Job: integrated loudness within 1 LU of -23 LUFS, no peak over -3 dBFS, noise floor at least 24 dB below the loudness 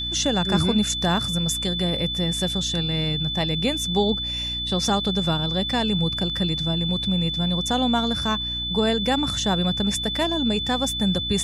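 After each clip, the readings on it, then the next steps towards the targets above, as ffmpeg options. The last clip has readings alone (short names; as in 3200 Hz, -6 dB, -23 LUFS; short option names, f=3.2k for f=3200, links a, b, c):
hum 60 Hz; harmonics up to 300 Hz; hum level -32 dBFS; steady tone 3500 Hz; tone level -26 dBFS; loudness -22.5 LUFS; peak -9.0 dBFS; loudness target -23.0 LUFS
-> -af "bandreject=f=60:t=h:w=4,bandreject=f=120:t=h:w=4,bandreject=f=180:t=h:w=4,bandreject=f=240:t=h:w=4,bandreject=f=300:t=h:w=4"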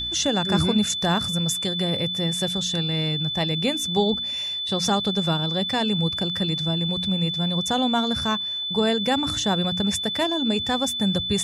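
hum none; steady tone 3500 Hz; tone level -26 dBFS
-> -af "bandreject=f=3.5k:w=30"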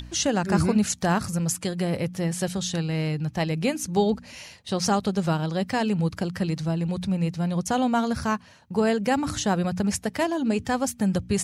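steady tone none; loudness -25.5 LUFS; peak -9.5 dBFS; loudness target -23.0 LUFS
-> -af "volume=2.5dB"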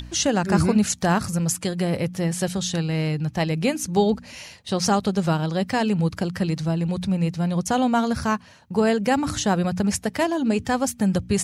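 loudness -23.0 LUFS; peak -7.0 dBFS; noise floor -47 dBFS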